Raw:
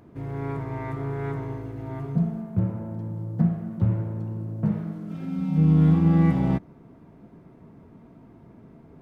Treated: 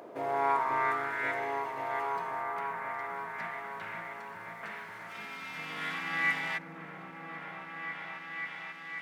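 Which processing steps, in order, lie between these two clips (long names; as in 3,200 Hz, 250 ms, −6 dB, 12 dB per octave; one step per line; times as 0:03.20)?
high-pass filter sweep 540 Hz → 1,900 Hz, 0:00.05–0:01.27
echo whose low-pass opens from repeat to repeat 536 ms, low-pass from 400 Hz, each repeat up 1 octave, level 0 dB
level +6.5 dB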